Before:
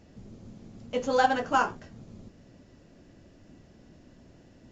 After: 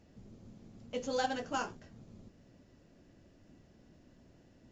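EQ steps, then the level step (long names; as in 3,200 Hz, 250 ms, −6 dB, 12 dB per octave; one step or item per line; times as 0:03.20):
dynamic equaliser 1,100 Hz, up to −7 dB, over −39 dBFS, Q 0.96
dynamic equaliser 5,800 Hz, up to +5 dB, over −48 dBFS, Q 0.79
−7.0 dB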